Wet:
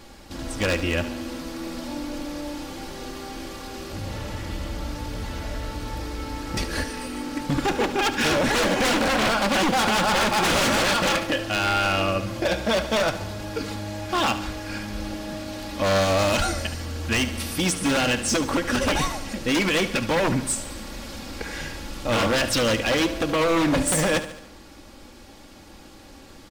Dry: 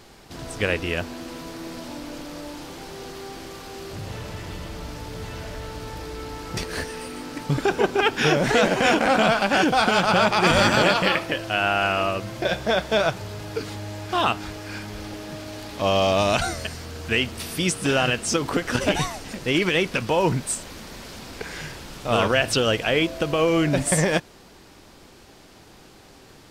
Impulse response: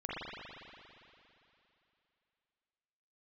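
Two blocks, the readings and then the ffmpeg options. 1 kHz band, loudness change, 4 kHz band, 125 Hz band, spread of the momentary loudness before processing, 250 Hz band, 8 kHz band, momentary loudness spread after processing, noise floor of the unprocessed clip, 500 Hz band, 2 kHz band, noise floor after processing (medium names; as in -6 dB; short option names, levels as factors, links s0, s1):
-1.5 dB, -2.0 dB, 0.0 dB, -1.5 dB, 17 LU, +0.5 dB, +2.5 dB, 14 LU, -49 dBFS, -2.0 dB, -1.0 dB, -46 dBFS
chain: -filter_complex "[0:a]lowshelf=f=200:g=4.5,aecho=1:1:3.6:0.54,aeval=exprs='0.158*(abs(mod(val(0)/0.158+3,4)-2)-1)':c=same,asplit=2[s0][s1];[s1]aecho=0:1:72|144|216|288|360|432:0.224|0.123|0.0677|0.0372|0.0205|0.0113[s2];[s0][s2]amix=inputs=2:normalize=0"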